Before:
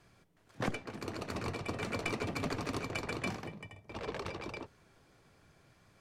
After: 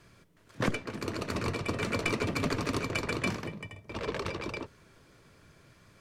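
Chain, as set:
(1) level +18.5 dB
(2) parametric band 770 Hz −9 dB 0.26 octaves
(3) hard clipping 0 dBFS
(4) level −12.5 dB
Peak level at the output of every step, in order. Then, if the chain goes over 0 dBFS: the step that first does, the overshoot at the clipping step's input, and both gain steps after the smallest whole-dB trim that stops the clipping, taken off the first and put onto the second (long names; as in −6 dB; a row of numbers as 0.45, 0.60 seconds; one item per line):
−2.5, −3.0, −3.0, −15.5 dBFS
no step passes full scale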